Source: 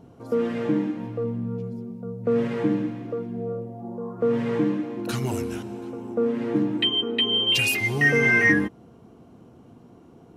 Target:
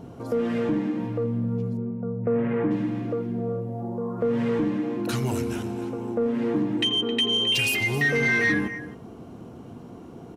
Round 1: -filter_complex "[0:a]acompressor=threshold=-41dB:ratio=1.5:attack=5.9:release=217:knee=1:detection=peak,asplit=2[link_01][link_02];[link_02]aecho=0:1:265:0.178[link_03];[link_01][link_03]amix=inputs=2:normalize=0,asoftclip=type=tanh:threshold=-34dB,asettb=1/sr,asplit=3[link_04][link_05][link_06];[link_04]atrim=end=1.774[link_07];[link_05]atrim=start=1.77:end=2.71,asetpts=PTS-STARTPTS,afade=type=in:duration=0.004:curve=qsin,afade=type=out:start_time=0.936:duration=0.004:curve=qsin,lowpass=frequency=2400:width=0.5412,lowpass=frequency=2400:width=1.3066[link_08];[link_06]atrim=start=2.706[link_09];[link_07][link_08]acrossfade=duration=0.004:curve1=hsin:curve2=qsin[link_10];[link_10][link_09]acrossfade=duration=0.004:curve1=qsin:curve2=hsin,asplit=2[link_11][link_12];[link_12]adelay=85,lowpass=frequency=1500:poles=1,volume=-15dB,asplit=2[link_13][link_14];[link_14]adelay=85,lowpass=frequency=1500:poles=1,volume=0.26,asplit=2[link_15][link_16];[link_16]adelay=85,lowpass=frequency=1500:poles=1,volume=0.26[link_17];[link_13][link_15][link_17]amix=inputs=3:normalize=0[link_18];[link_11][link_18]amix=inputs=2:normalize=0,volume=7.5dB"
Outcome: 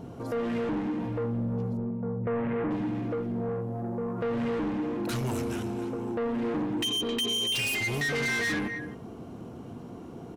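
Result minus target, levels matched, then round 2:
soft clipping: distortion +12 dB
-filter_complex "[0:a]acompressor=threshold=-41dB:ratio=1.5:attack=5.9:release=217:knee=1:detection=peak,asplit=2[link_01][link_02];[link_02]aecho=0:1:265:0.178[link_03];[link_01][link_03]amix=inputs=2:normalize=0,asoftclip=type=tanh:threshold=-22.5dB,asettb=1/sr,asplit=3[link_04][link_05][link_06];[link_04]atrim=end=1.774[link_07];[link_05]atrim=start=1.77:end=2.71,asetpts=PTS-STARTPTS,afade=type=in:duration=0.004:curve=qsin,afade=type=out:start_time=0.936:duration=0.004:curve=qsin,lowpass=frequency=2400:width=0.5412,lowpass=frequency=2400:width=1.3066[link_08];[link_06]atrim=start=2.706[link_09];[link_07][link_08]acrossfade=duration=0.004:curve1=hsin:curve2=qsin[link_10];[link_10][link_09]acrossfade=duration=0.004:curve1=qsin:curve2=hsin,asplit=2[link_11][link_12];[link_12]adelay=85,lowpass=frequency=1500:poles=1,volume=-15dB,asplit=2[link_13][link_14];[link_14]adelay=85,lowpass=frequency=1500:poles=1,volume=0.26,asplit=2[link_15][link_16];[link_16]adelay=85,lowpass=frequency=1500:poles=1,volume=0.26[link_17];[link_13][link_15][link_17]amix=inputs=3:normalize=0[link_18];[link_11][link_18]amix=inputs=2:normalize=0,volume=7.5dB"

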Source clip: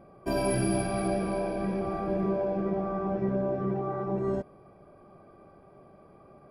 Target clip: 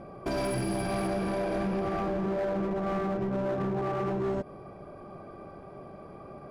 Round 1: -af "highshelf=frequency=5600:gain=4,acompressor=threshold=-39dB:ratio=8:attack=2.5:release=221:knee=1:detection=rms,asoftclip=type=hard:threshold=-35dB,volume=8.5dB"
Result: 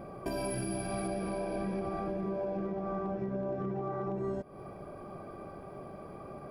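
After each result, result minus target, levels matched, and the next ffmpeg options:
8,000 Hz band +7.5 dB; downward compressor: peak gain reduction +7.5 dB
-af "lowpass=7700,highshelf=frequency=5600:gain=4,acompressor=threshold=-39dB:ratio=8:attack=2.5:release=221:knee=1:detection=rms,asoftclip=type=hard:threshold=-35dB,volume=8.5dB"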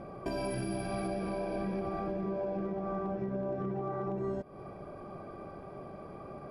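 downward compressor: peak gain reduction +7 dB
-af "lowpass=7700,highshelf=frequency=5600:gain=4,acompressor=threshold=-31dB:ratio=8:attack=2.5:release=221:knee=1:detection=rms,asoftclip=type=hard:threshold=-35dB,volume=8.5dB"

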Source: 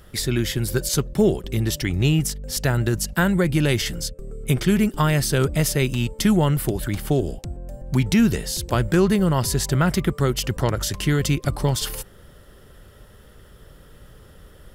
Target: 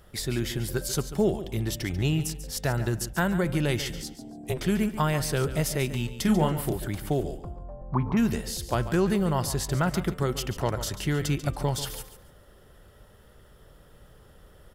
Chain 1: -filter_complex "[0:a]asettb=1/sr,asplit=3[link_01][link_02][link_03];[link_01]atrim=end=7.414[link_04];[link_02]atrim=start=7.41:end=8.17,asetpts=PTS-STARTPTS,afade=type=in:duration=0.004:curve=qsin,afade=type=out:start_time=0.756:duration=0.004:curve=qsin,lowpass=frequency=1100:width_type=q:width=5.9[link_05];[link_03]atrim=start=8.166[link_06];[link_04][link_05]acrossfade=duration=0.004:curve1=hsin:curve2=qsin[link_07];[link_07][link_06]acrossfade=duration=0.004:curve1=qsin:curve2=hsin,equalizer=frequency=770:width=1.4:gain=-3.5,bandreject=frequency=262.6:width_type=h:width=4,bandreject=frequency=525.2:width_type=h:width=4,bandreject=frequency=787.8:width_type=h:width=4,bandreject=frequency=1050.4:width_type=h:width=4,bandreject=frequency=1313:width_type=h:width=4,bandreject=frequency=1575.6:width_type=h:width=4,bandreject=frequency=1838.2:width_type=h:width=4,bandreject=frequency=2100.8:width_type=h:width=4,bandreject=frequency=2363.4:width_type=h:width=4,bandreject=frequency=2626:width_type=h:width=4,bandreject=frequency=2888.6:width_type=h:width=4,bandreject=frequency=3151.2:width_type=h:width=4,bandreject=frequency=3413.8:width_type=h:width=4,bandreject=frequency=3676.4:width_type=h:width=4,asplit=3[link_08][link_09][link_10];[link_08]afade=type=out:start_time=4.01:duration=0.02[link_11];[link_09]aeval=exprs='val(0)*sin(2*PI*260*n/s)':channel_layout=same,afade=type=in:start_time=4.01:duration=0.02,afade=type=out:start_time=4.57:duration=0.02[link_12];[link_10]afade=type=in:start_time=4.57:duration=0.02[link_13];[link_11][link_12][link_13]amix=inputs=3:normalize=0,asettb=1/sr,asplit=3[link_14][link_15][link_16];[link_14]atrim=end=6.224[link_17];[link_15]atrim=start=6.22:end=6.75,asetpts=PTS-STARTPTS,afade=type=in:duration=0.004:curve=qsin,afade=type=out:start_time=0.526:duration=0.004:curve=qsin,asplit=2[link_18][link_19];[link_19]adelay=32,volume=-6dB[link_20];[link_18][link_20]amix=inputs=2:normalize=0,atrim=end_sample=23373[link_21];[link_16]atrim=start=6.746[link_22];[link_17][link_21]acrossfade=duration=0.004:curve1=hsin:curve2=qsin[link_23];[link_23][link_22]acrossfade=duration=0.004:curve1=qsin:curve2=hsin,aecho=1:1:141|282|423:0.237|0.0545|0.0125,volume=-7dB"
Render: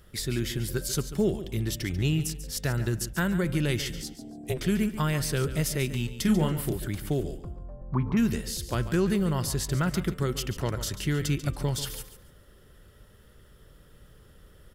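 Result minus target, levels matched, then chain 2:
1,000 Hz band −4.5 dB
-filter_complex "[0:a]asettb=1/sr,asplit=3[link_01][link_02][link_03];[link_01]atrim=end=7.414[link_04];[link_02]atrim=start=7.41:end=8.17,asetpts=PTS-STARTPTS,afade=type=in:duration=0.004:curve=qsin,afade=type=out:start_time=0.756:duration=0.004:curve=qsin,lowpass=frequency=1100:width_type=q:width=5.9[link_05];[link_03]atrim=start=8.166[link_06];[link_04][link_05]acrossfade=duration=0.004:curve1=hsin:curve2=qsin[link_07];[link_07][link_06]acrossfade=duration=0.004:curve1=qsin:curve2=hsin,equalizer=frequency=770:width=1.4:gain=5,bandreject=frequency=262.6:width_type=h:width=4,bandreject=frequency=525.2:width_type=h:width=4,bandreject=frequency=787.8:width_type=h:width=4,bandreject=frequency=1050.4:width_type=h:width=4,bandreject=frequency=1313:width_type=h:width=4,bandreject=frequency=1575.6:width_type=h:width=4,bandreject=frequency=1838.2:width_type=h:width=4,bandreject=frequency=2100.8:width_type=h:width=4,bandreject=frequency=2363.4:width_type=h:width=4,bandreject=frequency=2626:width_type=h:width=4,bandreject=frequency=2888.6:width_type=h:width=4,bandreject=frequency=3151.2:width_type=h:width=4,bandreject=frequency=3413.8:width_type=h:width=4,bandreject=frequency=3676.4:width_type=h:width=4,asplit=3[link_08][link_09][link_10];[link_08]afade=type=out:start_time=4.01:duration=0.02[link_11];[link_09]aeval=exprs='val(0)*sin(2*PI*260*n/s)':channel_layout=same,afade=type=in:start_time=4.01:duration=0.02,afade=type=out:start_time=4.57:duration=0.02[link_12];[link_10]afade=type=in:start_time=4.57:duration=0.02[link_13];[link_11][link_12][link_13]amix=inputs=3:normalize=0,asettb=1/sr,asplit=3[link_14][link_15][link_16];[link_14]atrim=end=6.224[link_17];[link_15]atrim=start=6.22:end=6.75,asetpts=PTS-STARTPTS,afade=type=in:duration=0.004:curve=qsin,afade=type=out:start_time=0.526:duration=0.004:curve=qsin,asplit=2[link_18][link_19];[link_19]adelay=32,volume=-6dB[link_20];[link_18][link_20]amix=inputs=2:normalize=0,atrim=end_sample=23373[link_21];[link_16]atrim=start=6.746[link_22];[link_17][link_21]acrossfade=duration=0.004:curve1=hsin:curve2=qsin[link_23];[link_23][link_22]acrossfade=duration=0.004:curve1=qsin:curve2=hsin,aecho=1:1:141|282|423:0.237|0.0545|0.0125,volume=-7dB"

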